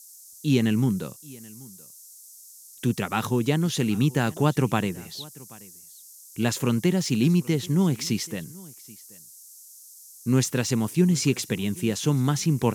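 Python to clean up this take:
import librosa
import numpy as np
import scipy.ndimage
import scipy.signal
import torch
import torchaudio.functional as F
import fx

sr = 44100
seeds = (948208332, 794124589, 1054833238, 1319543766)

y = fx.noise_reduce(x, sr, print_start_s=9.46, print_end_s=9.96, reduce_db=21.0)
y = fx.fix_echo_inverse(y, sr, delay_ms=781, level_db=-23.0)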